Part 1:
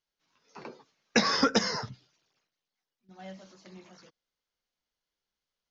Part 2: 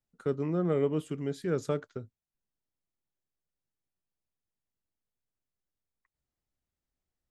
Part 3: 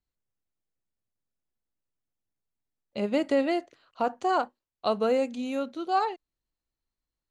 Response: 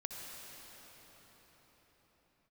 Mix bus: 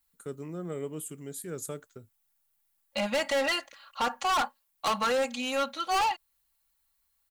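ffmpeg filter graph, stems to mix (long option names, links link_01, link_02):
-filter_complex "[1:a]aexciter=amount=7:drive=6.4:freq=7500,highshelf=frequency=3500:gain=10.5,volume=-8.5dB[link_01];[2:a]firequalizer=gain_entry='entry(190,0);entry(320,-14);entry(520,0);entry(900,11)':delay=0.05:min_phase=1,aecho=1:1:3.6:0.96,volume=-2.5dB[link_02];[link_01][link_02]amix=inputs=2:normalize=0,asoftclip=type=hard:threshold=-24dB"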